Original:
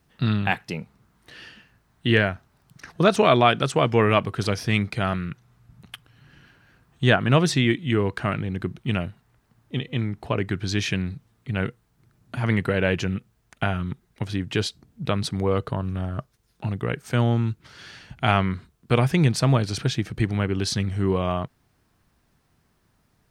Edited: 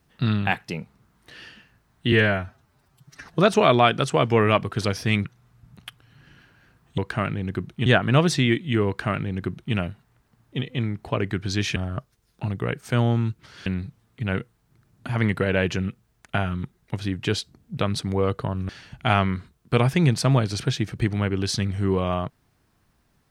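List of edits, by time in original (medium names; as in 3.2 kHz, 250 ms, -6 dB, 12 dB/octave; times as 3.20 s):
2.12–2.88 s: stretch 1.5×
4.87–5.31 s: delete
8.05–8.93 s: copy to 7.04 s
15.97–17.87 s: move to 10.94 s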